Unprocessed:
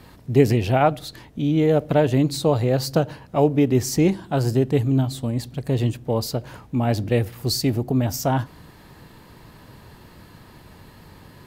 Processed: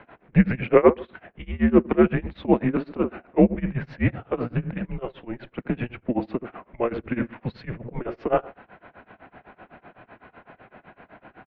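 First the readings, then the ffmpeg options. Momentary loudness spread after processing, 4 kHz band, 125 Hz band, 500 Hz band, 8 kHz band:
16 LU, under -15 dB, -7.5 dB, -2.0 dB, under -40 dB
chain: -filter_complex "[0:a]asplit=2[s0][s1];[s1]adelay=74,lowpass=f=920:p=1,volume=0.282,asplit=2[s2][s3];[s3]adelay=74,lowpass=f=920:p=1,volume=0.29,asplit=2[s4][s5];[s5]adelay=74,lowpass=f=920:p=1,volume=0.29[s6];[s0][s2][s4][s6]amix=inputs=4:normalize=0,tremolo=f=7.9:d=0.95,highpass=f=440:t=q:w=0.5412,highpass=f=440:t=q:w=1.307,lowpass=f=2700:t=q:w=0.5176,lowpass=f=2700:t=q:w=0.7071,lowpass=f=2700:t=q:w=1.932,afreqshift=-240,volume=2.37"

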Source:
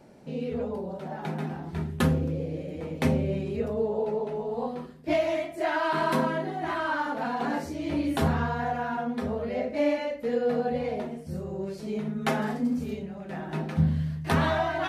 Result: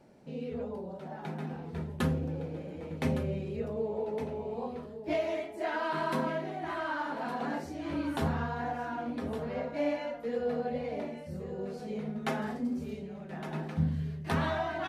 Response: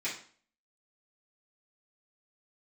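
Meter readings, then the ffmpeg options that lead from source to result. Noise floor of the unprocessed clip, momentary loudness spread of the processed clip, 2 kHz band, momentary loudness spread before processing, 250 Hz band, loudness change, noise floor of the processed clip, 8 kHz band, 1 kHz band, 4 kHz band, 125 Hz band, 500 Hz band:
-41 dBFS, 9 LU, -6.0 dB, 9 LU, -6.0 dB, -5.5 dB, -45 dBFS, -7.0 dB, -6.0 dB, -6.0 dB, -5.5 dB, -5.5 dB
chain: -af "highshelf=f=9500:g=-4,aecho=1:1:1162:0.282,volume=0.501"

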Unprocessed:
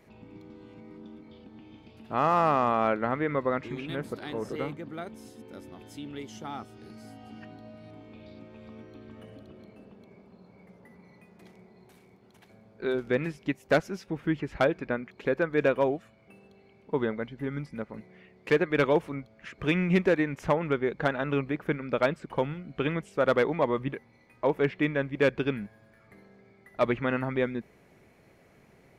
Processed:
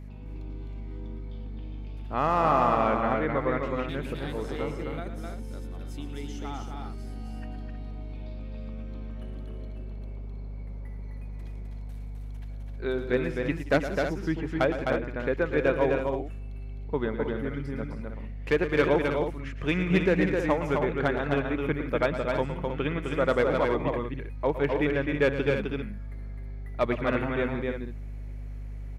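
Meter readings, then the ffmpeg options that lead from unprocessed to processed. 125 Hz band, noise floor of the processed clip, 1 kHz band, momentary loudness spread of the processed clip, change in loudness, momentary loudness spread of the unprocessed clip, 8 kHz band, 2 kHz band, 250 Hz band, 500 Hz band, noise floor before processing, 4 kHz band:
+3.0 dB, -37 dBFS, +1.0 dB, 16 LU, +0.5 dB, 23 LU, no reading, +1.0 dB, +1.0 dB, +1.0 dB, -59 dBFS, +1.0 dB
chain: -af "aeval=exprs='val(0)+0.0112*(sin(2*PI*50*n/s)+sin(2*PI*2*50*n/s)/2+sin(2*PI*3*50*n/s)/3+sin(2*PI*4*50*n/s)/4+sin(2*PI*5*50*n/s)/5)':c=same,aecho=1:1:113|177|258|317:0.282|0.133|0.631|0.355,volume=0.891"

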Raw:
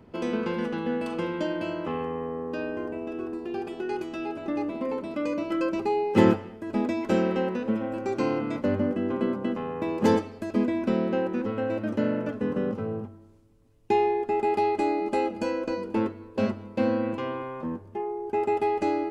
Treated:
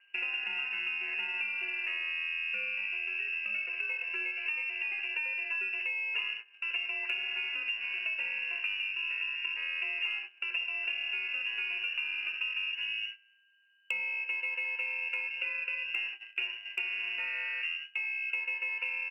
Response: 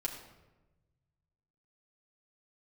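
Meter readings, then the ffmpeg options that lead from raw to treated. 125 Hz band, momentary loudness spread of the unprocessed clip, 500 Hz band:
under -35 dB, 9 LU, -30.5 dB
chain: -filter_complex "[0:a]asplit=2[s0][s1];[s1]asoftclip=type=tanh:threshold=0.119,volume=0.668[s2];[s0][s2]amix=inputs=2:normalize=0,aeval=exprs='val(0)+0.00398*sin(2*PI*1400*n/s)':c=same,lowpass=f=2600:t=q:w=0.5098,lowpass=f=2600:t=q:w=0.6013,lowpass=f=2600:t=q:w=0.9,lowpass=f=2600:t=q:w=2.563,afreqshift=-3000,highpass=f=190:w=0.5412,highpass=f=190:w=1.3066,aemphasis=mode=production:type=cd,asplit=2[s3][s4];[s4]aecho=0:1:10|66:0.335|0.316[s5];[s3][s5]amix=inputs=2:normalize=0,acompressor=threshold=0.0447:ratio=16,aeval=exprs='0.126*(cos(1*acos(clip(val(0)/0.126,-1,1)))-cos(1*PI/2))+0.000708*(cos(8*acos(clip(val(0)/0.126,-1,1)))-cos(8*PI/2))':c=same,agate=range=0.158:threshold=0.0141:ratio=16:detection=peak,volume=0.631"

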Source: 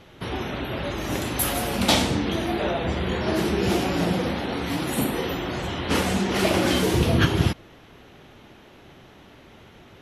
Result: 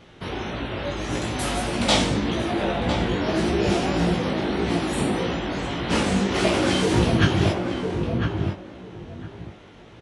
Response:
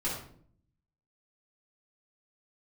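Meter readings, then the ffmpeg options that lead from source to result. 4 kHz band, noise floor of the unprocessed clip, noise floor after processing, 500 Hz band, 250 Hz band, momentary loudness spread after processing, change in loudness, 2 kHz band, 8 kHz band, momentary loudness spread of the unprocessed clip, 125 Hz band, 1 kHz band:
+0.5 dB, -50 dBFS, -46 dBFS, +1.5 dB, +1.5 dB, 16 LU, +0.5 dB, +0.5 dB, -1.5 dB, 9 LU, +1.5 dB, +1.0 dB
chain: -filter_complex "[0:a]asplit=2[s0][s1];[s1]adelay=1004,lowpass=f=1400:p=1,volume=0.631,asplit=2[s2][s3];[s3]adelay=1004,lowpass=f=1400:p=1,volume=0.21,asplit=2[s4][s5];[s5]adelay=1004,lowpass=f=1400:p=1,volume=0.21[s6];[s0][s2][s4][s6]amix=inputs=4:normalize=0,aresample=22050,aresample=44100,flanger=delay=17:depth=4:speed=1.7,volume=1.41"

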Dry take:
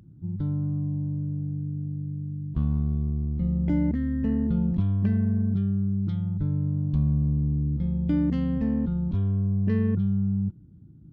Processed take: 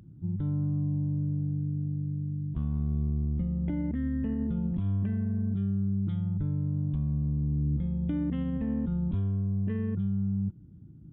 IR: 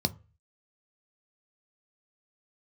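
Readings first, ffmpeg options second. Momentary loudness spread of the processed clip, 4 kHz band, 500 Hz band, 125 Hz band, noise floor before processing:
3 LU, no reading, -5.5 dB, -3.5 dB, -50 dBFS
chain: -af "alimiter=limit=0.075:level=0:latency=1:release=173,aresample=8000,aresample=44100"

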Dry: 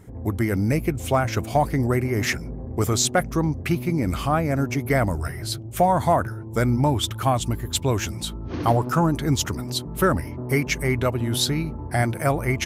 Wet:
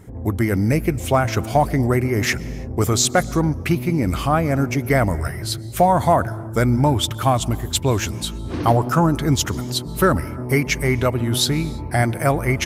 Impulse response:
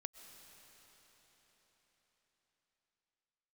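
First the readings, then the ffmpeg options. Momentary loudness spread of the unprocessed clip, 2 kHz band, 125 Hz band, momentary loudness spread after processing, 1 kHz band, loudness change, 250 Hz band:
7 LU, +3.5 dB, +3.5 dB, 7 LU, +3.5 dB, +3.5 dB, +3.5 dB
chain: -filter_complex "[0:a]asplit=2[s0][s1];[1:a]atrim=start_sample=2205,afade=t=out:st=0.39:d=0.01,atrim=end_sample=17640[s2];[s1][s2]afir=irnorm=-1:irlink=0,volume=0.841[s3];[s0][s3]amix=inputs=2:normalize=0"

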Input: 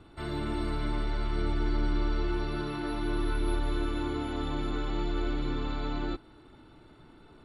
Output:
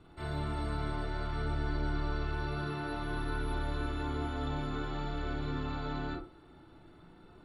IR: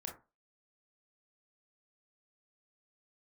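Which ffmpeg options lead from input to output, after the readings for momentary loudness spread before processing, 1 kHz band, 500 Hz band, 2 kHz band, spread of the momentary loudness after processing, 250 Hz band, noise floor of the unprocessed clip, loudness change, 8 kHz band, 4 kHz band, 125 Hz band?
3 LU, -1.0 dB, -4.5 dB, -0.5 dB, 3 LU, -5.5 dB, -55 dBFS, -3.5 dB, -5.0 dB, -4.5 dB, -0.5 dB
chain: -filter_complex "[1:a]atrim=start_sample=2205[s0];[0:a][s0]afir=irnorm=-1:irlink=0"

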